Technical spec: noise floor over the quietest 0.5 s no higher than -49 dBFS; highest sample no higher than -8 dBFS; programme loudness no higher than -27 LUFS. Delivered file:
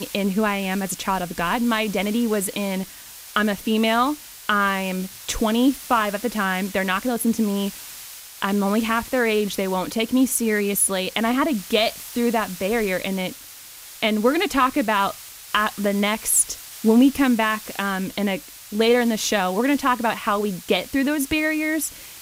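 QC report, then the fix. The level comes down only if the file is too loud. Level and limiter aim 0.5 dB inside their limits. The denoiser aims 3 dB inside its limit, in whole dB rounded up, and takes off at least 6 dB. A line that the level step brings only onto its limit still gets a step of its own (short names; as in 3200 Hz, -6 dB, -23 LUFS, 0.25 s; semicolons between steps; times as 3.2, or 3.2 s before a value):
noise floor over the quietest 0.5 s -42 dBFS: fail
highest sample -5.0 dBFS: fail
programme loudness -22.0 LUFS: fail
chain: denoiser 6 dB, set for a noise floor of -42 dBFS; gain -5.5 dB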